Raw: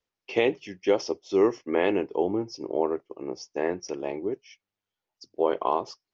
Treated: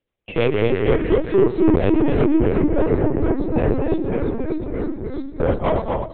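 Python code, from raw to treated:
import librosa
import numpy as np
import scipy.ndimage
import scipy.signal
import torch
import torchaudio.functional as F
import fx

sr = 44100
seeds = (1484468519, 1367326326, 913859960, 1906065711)

p1 = fx.dynamic_eq(x, sr, hz=120.0, q=0.84, threshold_db=-40.0, ratio=4.0, max_db=4, at=(1.35, 1.92))
p2 = fx.octave_resonator(p1, sr, note='E', decay_s=0.62, at=(4.02, 5.4))
p3 = fx.rotary(p2, sr, hz=6.3)
p4 = fx.graphic_eq_31(p3, sr, hz=(125, 315, 630, 1600), db=(10, 8, 7, -4))
p5 = fx.rider(p4, sr, range_db=4, speed_s=0.5)
p6 = p4 + F.gain(torch.from_numpy(p5), 0.0).numpy()
p7 = fx.transient(p6, sr, attack_db=1, sustain_db=-4)
p8 = p7 + fx.echo_feedback(p7, sr, ms=244, feedback_pct=36, wet_db=-5, dry=0)
p9 = 10.0 ** (-10.5 / 20.0) * np.tanh(p8 / 10.0 ** (-10.5 / 20.0))
p10 = fx.echo_pitch(p9, sr, ms=117, semitones=-2, count=3, db_per_echo=-3.0)
p11 = p10 + 10.0 ** (-15.5 / 20.0) * np.pad(p10, (int(115 * sr / 1000.0), 0))[:len(p10)]
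p12 = fx.lpc_vocoder(p11, sr, seeds[0], excitation='pitch_kept', order=10)
y = fx.band_squash(p12, sr, depth_pct=40, at=(2.51, 3.4))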